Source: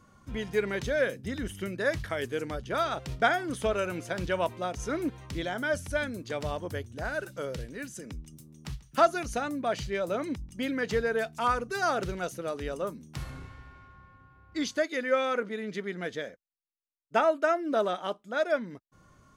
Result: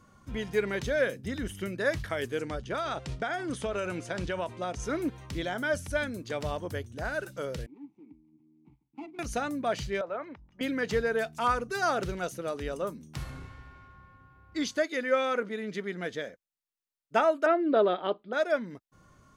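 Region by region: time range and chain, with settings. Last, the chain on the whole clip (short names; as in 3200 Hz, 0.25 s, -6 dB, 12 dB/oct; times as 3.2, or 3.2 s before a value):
2.39–4.84 LPF 10000 Hz 24 dB/oct + compressor 12:1, threshold -27 dBFS
7.66–9.19 median filter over 41 samples + vowel filter u
10.01–10.61 LPF 5300 Hz 24 dB/oct + three-band isolator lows -15 dB, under 540 Hz, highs -21 dB, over 2100 Hz
17.46–18.33 steep low-pass 4700 Hz 96 dB/oct + bell 390 Hz +7.5 dB 0.93 oct
whole clip: dry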